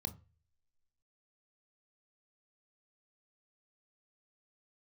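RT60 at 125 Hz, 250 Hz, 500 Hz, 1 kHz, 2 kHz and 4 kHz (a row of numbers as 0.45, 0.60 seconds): 0.55, 0.30, 0.35, 0.30, 0.70, 0.30 seconds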